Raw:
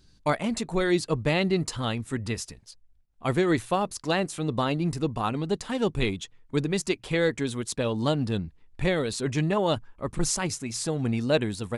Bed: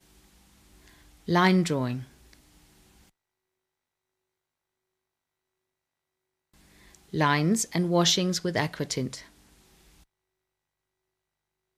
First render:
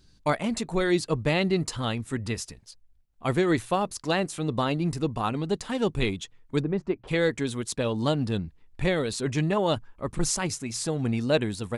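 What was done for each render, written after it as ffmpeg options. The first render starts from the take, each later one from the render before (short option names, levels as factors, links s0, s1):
-filter_complex "[0:a]asplit=3[s0][s1][s2];[s0]afade=t=out:st=6.61:d=0.02[s3];[s1]lowpass=1200,afade=t=in:st=6.61:d=0.02,afade=t=out:st=7.07:d=0.02[s4];[s2]afade=t=in:st=7.07:d=0.02[s5];[s3][s4][s5]amix=inputs=3:normalize=0"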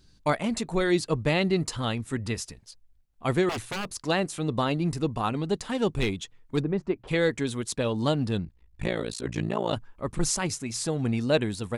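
-filter_complex "[0:a]asettb=1/sr,asplit=3[s0][s1][s2];[s0]atrim=end=3.494[s3];[s1]atrim=start=3.49:end=3.99,asetpts=PTS-STARTPTS,afade=t=in:d=0.004:c=qsin,afade=t=out:st=0.496:d=0.004:c=qsin,aeval=exprs='0.0501*(abs(mod(val(0)/0.0501+3,4)-2)-1)':c=same[s4];[s2]atrim=start=3.986[s5];[s3][s4]acrossfade=d=0.004:c1=hsin:c2=qsin[s6];[s6][s5]acrossfade=d=0.004:c1=qsin:c2=hsin,asettb=1/sr,asplit=3[s7][s8][s9];[s7]atrim=end=5.984[s10];[s8]atrim=start=5.98:end=6.58,asetpts=PTS-STARTPTS,afade=t=in:d=0.004:c=qsin,afade=t=out:st=0.596:d=0.004:c=qsin,asoftclip=type=hard:threshold=0.112[s11];[s9]atrim=start=6.576[s12];[s10][s11]acrossfade=d=0.004:c1=hsin:c2=qsin[s13];[s13][s12]acrossfade=d=0.004:c1=qsin:c2=hsin,asettb=1/sr,asplit=3[s14][s15][s16];[s14]atrim=end=8.454[s17];[s15]atrim=start=8.45:end=9.73,asetpts=PTS-STARTPTS,afade=t=in:d=0.004:c=qsin,afade=t=out:st=1.276:d=0.004:c=qsin,tremolo=f=57:d=1[s18];[s16]atrim=start=9.726[s19];[s17][s18]acrossfade=d=0.004:c1=hsin:c2=qsin[s20];[s20][s19]acrossfade=d=0.004:c1=qsin:c2=hsin"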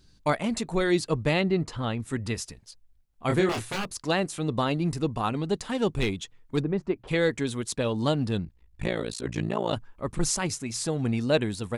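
-filter_complex "[0:a]asettb=1/sr,asplit=3[s0][s1][s2];[s0]atrim=end=1.414[s3];[s1]atrim=start=1.41:end=2,asetpts=PTS-STARTPTS,afade=t=in:d=0.004:c=qsin,afade=t=out:st=0.586:d=0.004:c=qsin,aemphasis=mode=reproduction:type=75kf[s4];[s2]atrim=start=1.996[s5];[s3][s4]acrossfade=d=0.004:c1=hsin:c2=qsin[s6];[s6][s5]acrossfade=d=0.004:c1=qsin:c2=hsin,asettb=1/sr,asplit=3[s7][s8][s9];[s7]atrim=end=3.274[s10];[s8]atrim=start=3.27:end=3.84,asetpts=PTS-STARTPTS,afade=t=in:d=0.004:c=qsin,afade=t=out:st=0.566:d=0.004:c=qsin,asplit=2[s11][s12];[s12]adelay=26,volume=0.631[s13];[s11][s13]amix=inputs=2:normalize=0,atrim=end_sample=25137[s14];[s9]atrim=start=3.836[s15];[s10][s14]acrossfade=d=0.004:c1=hsin:c2=qsin[s16];[s16][s15]acrossfade=d=0.004:c1=qsin:c2=hsin"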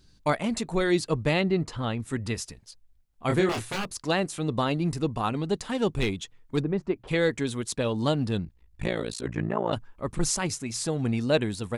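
-filter_complex "[0:a]asettb=1/sr,asplit=3[s0][s1][s2];[s0]atrim=end=9.284[s3];[s1]atrim=start=9.28:end=9.72,asetpts=PTS-STARTPTS,afade=t=in:d=0.004:c=qsin,afade=t=out:st=0.436:d=0.004:c=qsin,highshelf=f=2600:t=q:w=1.5:g=-12.5[s4];[s2]atrim=start=9.716[s5];[s3][s4]acrossfade=d=0.004:c1=hsin:c2=qsin[s6];[s6][s5]acrossfade=d=0.004:c1=qsin:c2=hsin"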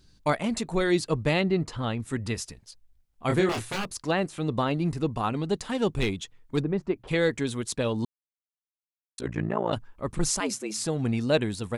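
-filter_complex "[0:a]asettb=1/sr,asplit=3[s0][s1][s2];[s0]atrim=end=3.984[s3];[s1]atrim=start=3.98:end=5.37,asetpts=PTS-STARTPTS,afade=t=in:d=0.004:c=qsin,afade=t=out:st=1.386:d=0.004:c=qsin,acrossover=split=3200[s4][s5];[s5]acompressor=threshold=0.00631:ratio=4:attack=1:release=60[s6];[s4][s6]amix=inputs=2:normalize=0[s7];[s2]atrim=start=5.366[s8];[s3][s7]acrossfade=d=0.004:c1=hsin:c2=qsin[s9];[s9][s8]acrossfade=d=0.004:c1=qsin:c2=hsin,asettb=1/sr,asplit=3[s10][s11][s12];[s10]atrim=end=10.404[s13];[s11]atrim=start=10.4:end=10.84,asetpts=PTS-STARTPTS,afade=t=in:d=0.004:c=qsin,afade=t=out:st=0.436:d=0.004:c=qsin,afreqshift=100[s14];[s12]atrim=start=10.836[s15];[s13][s14]acrossfade=d=0.004:c1=hsin:c2=qsin[s16];[s16][s15]acrossfade=d=0.004:c1=qsin:c2=hsin,asplit=3[s17][s18][s19];[s17]atrim=end=8.05,asetpts=PTS-STARTPTS,afade=t=out:st=8.046:d=0.004:c=hsin[s20];[s18]atrim=start=8.05:end=9.18,asetpts=PTS-STARTPTS,volume=0[s21];[s19]atrim=start=9.18,asetpts=PTS-STARTPTS,afade=t=in:d=0.004:c=hsin[s22];[s20][s21][s22]concat=n=3:v=0:a=1"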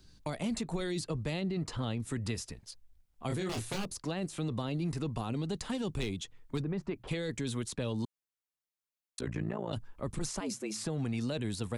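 -filter_complex "[0:a]alimiter=limit=0.0891:level=0:latency=1:release=19,acrossover=split=210|750|3100[s0][s1][s2][s3];[s0]acompressor=threshold=0.0178:ratio=4[s4];[s1]acompressor=threshold=0.0126:ratio=4[s5];[s2]acompressor=threshold=0.00398:ratio=4[s6];[s3]acompressor=threshold=0.00891:ratio=4[s7];[s4][s5][s6][s7]amix=inputs=4:normalize=0"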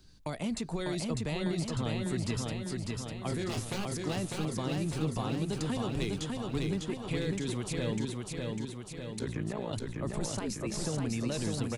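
-af "aecho=1:1:600|1200|1800|2400|3000|3600|4200|4800|5400:0.708|0.425|0.255|0.153|0.0917|0.055|0.033|0.0198|0.0119"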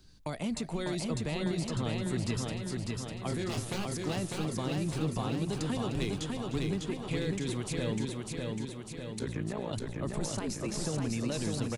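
-af "aecho=1:1:303:0.188"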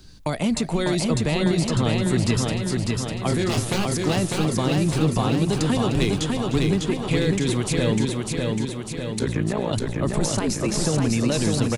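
-af "volume=3.76"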